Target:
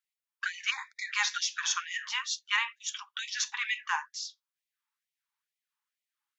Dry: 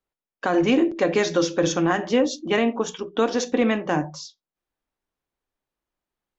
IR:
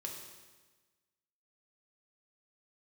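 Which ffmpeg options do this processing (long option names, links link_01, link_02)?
-filter_complex "[0:a]asplit=3[link_01][link_02][link_03];[link_01]afade=type=out:start_time=0.7:duration=0.02[link_04];[link_02]asuperstop=centerf=2900:order=8:qfactor=2.3,afade=type=in:start_time=0.7:duration=0.02,afade=type=out:start_time=1.11:duration=0.02[link_05];[link_03]afade=type=in:start_time=1.11:duration=0.02[link_06];[link_04][link_05][link_06]amix=inputs=3:normalize=0,afftfilt=real='re*gte(b*sr/1024,780*pow(1900/780,0.5+0.5*sin(2*PI*2.2*pts/sr)))':imag='im*gte(b*sr/1024,780*pow(1900/780,0.5+0.5*sin(2*PI*2.2*pts/sr)))':win_size=1024:overlap=0.75"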